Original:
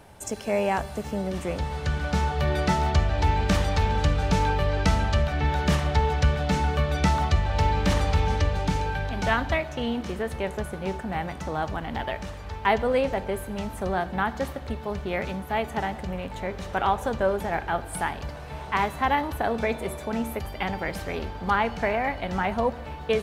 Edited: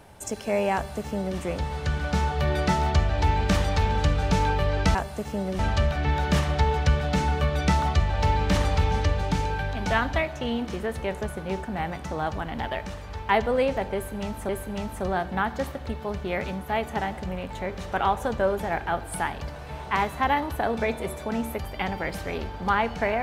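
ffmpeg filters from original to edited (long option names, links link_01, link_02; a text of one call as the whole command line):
ffmpeg -i in.wav -filter_complex "[0:a]asplit=4[link_01][link_02][link_03][link_04];[link_01]atrim=end=4.952[link_05];[link_02]atrim=start=0.738:end=1.382[link_06];[link_03]atrim=start=4.948:end=13.852[link_07];[link_04]atrim=start=13.298[link_08];[link_05][link_06]acrossfade=duration=0.004:curve1=hsin:curve2=hsin[link_09];[link_09][link_07]acrossfade=duration=0.004:curve1=hsin:curve2=hsin[link_10];[link_10][link_08]acrossfade=duration=0.004:curve1=hsin:curve2=hsin" out.wav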